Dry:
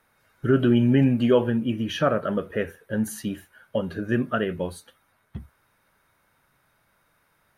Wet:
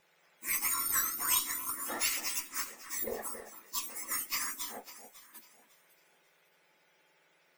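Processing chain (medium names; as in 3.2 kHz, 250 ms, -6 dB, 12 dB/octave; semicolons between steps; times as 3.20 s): spectrum inverted on a logarithmic axis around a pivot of 1.8 kHz; spectral gate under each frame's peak -10 dB weak; Chebyshev shaper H 6 -23 dB, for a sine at -18.5 dBFS; treble shelf 10 kHz +4.5 dB; on a send: echo whose repeats swap between lows and highs 275 ms, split 2.2 kHz, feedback 53%, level -10.5 dB; on the sum: trim +1.5 dB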